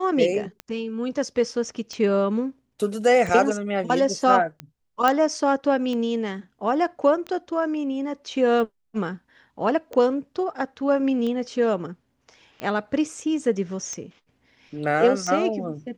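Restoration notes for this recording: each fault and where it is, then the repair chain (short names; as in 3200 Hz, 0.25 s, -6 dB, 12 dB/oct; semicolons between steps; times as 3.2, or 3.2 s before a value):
tick 45 rpm -19 dBFS
5.08 pop -7 dBFS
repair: de-click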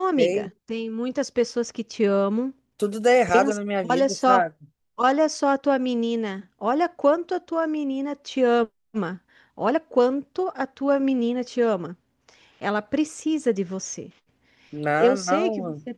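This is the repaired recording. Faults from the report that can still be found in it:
none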